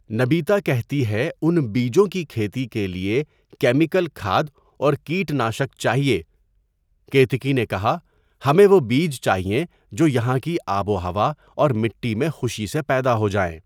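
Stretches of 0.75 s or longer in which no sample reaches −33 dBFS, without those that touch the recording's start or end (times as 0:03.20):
0:06.22–0:07.12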